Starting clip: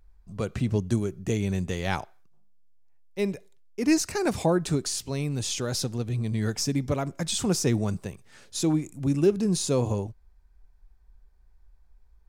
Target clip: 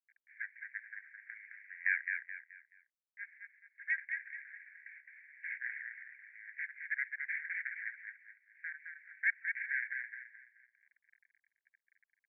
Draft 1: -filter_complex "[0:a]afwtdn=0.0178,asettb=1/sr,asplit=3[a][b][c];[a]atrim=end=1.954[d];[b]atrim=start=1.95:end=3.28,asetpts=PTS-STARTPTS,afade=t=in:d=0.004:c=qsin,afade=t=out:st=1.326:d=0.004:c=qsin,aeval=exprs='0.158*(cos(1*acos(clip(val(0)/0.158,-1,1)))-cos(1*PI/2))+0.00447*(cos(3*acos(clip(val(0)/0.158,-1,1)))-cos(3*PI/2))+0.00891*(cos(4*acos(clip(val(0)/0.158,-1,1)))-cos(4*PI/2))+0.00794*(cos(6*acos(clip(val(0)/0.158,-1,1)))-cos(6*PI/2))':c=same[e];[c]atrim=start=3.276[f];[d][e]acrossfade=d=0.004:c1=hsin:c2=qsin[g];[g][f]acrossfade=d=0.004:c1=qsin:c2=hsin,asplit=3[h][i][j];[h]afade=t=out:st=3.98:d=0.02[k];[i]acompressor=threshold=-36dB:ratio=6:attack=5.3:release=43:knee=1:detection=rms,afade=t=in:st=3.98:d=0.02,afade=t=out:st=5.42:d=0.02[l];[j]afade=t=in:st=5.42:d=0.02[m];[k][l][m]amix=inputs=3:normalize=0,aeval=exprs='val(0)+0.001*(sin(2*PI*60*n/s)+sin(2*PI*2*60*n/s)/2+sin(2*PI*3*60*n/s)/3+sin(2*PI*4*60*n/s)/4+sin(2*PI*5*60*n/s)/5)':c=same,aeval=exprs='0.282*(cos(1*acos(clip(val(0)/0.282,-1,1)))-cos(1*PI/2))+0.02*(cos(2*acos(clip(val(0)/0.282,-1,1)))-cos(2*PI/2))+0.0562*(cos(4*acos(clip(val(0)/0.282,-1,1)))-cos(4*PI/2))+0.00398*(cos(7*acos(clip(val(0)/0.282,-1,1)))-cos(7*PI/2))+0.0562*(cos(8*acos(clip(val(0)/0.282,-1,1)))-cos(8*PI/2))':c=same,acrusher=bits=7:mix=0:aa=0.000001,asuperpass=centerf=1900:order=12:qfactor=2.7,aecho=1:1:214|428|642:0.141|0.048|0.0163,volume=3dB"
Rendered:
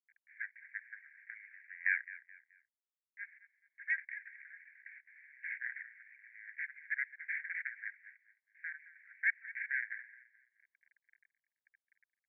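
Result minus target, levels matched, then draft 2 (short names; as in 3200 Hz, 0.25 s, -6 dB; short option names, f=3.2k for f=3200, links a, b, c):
echo-to-direct -11.5 dB
-filter_complex "[0:a]afwtdn=0.0178,asettb=1/sr,asplit=3[a][b][c];[a]atrim=end=1.954[d];[b]atrim=start=1.95:end=3.28,asetpts=PTS-STARTPTS,afade=t=in:d=0.004:c=qsin,afade=t=out:st=1.326:d=0.004:c=qsin,aeval=exprs='0.158*(cos(1*acos(clip(val(0)/0.158,-1,1)))-cos(1*PI/2))+0.00447*(cos(3*acos(clip(val(0)/0.158,-1,1)))-cos(3*PI/2))+0.00891*(cos(4*acos(clip(val(0)/0.158,-1,1)))-cos(4*PI/2))+0.00794*(cos(6*acos(clip(val(0)/0.158,-1,1)))-cos(6*PI/2))':c=same[e];[c]atrim=start=3.276[f];[d][e]acrossfade=d=0.004:c1=hsin:c2=qsin[g];[g][f]acrossfade=d=0.004:c1=qsin:c2=hsin,asplit=3[h][i][j];[h]afade=t=out:st=3.98:d=0.02[k];[i]acompressor=threshold=-36dB:ratio=6:attack=5.3:release=43:knee=1:detection=rms,afade=t=in:st=3.98:d=0.02,afade=t=out:st=5.42:d=0.02[l];[j]afade=t=in:st=5.42:d=0.02[m];[k][l][m]amix=inputs=3:normalize=0,aeval=exprs='val(0)+0.001*(sin(2*PI*60*n/s)+sin(2*PI*2*60*n/s)/2+sin(2*PI*3*60*n/s)/3+sin(2*PI*4*60*n/s)/4+sin(2*PI*5*60*n/s)/5)':c=same,aeval=exprs='0.282*(cos(1*acos(clip(val(0)/0.282,-1,1)))-cos(1*PI/2))+0.02*(cos(2*acos(clip(val(0)/0.282,-1,1)))-cos(2*PI/2))+0.0562*(cos(4*acos(clip(val(0)/0.282,-1,1)))-cos(4*PI/2))+0.00398*(cos(7*acos(clip(val(0)/0.282,-1,1)))-cos(7*PI/2))+0.0562*(cos(8*acos(clip(val(0)/0.282,-1,1)))-cos(8*PI/2))':c=same,acrusher=bits=7:mix=0:aa=0.000001,asuperpass=centerf=1900:order=12:qfactor=2.7,aecho=1:1:214|428|642|856:0.531|0.181|0.0614|0.0209,volume=3dB"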